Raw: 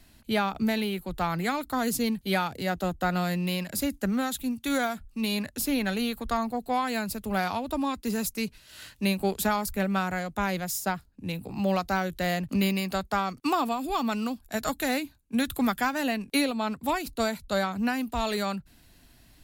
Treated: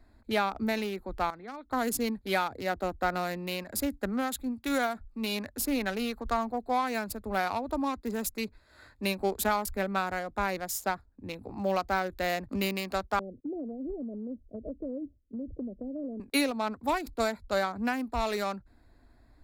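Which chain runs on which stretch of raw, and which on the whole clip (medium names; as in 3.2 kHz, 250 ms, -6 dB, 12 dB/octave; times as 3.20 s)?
1.30–1.71 s: de-esser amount 90% + four-pole ladder low-pass 3.9 kHz, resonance 60%
13.19–16.20 s: steep low-pass 590 Hz 72 dB/octave + compression, threshold -30 dBFS
whole clip: local Wiener filter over 15 samples; peaking EQ 160 Hz -14 dB 0.64 oct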